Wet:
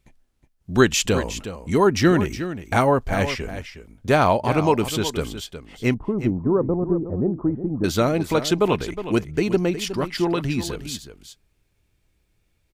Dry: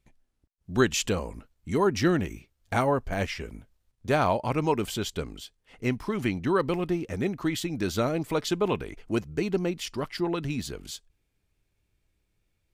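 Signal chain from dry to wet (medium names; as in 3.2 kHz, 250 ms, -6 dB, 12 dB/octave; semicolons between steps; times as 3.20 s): 5.94–7.84 s: Bessel low-pass 640 Hz, order 6; delay 364 ms -11.5 dB; trim +6.5 dB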